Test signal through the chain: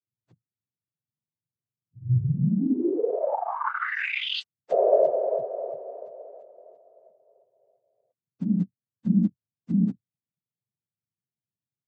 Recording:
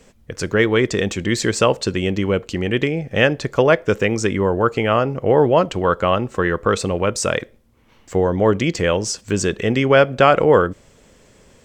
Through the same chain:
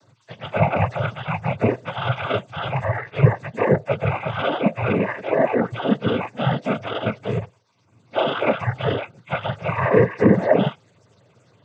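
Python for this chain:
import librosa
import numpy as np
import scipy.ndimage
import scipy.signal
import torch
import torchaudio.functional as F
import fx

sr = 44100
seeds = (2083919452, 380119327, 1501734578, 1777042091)

y = fx.octave_mirror(x, sr, pivot_hz=510.0)
y = fx.noise_vocoder(y, sr, seeds[0], bands=16)
y = y * librosa.db_to_amplitude(-2.0)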